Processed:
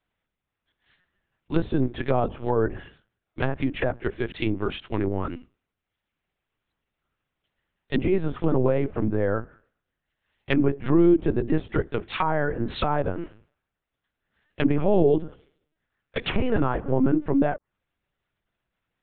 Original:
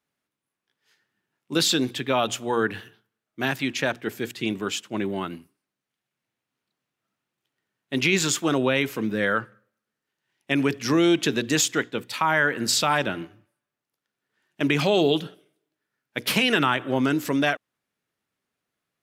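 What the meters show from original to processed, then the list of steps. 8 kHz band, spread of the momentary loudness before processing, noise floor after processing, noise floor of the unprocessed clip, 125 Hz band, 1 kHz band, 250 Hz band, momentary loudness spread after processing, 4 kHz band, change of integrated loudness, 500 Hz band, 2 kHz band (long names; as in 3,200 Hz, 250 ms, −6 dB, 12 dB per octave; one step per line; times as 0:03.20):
below −40 dB, 10 LU, −85 dBFS, below −85 dBFS, +4.0 dB, −3.0 dB, +1.0 dB, 10 LU, −13.0 dB, −1.5 dB, +1.5 dB, −9.0 dB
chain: linear-prediction vocoder at 8 kHz pitch kept
treble cut that deepens with the level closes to 760 Hz, closed at −21.5 dBFS
level +2.5 dB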